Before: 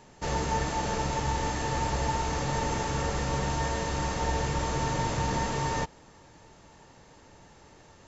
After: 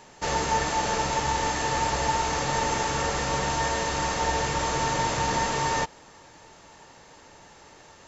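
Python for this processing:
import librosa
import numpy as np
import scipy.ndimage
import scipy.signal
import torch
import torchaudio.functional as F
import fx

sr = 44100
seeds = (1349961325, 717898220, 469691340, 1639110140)

y = fx.low_shelf(x, sr, hz=340.0, db=-10.0)
y = y * 10.0 ** (6.5 / 20.0)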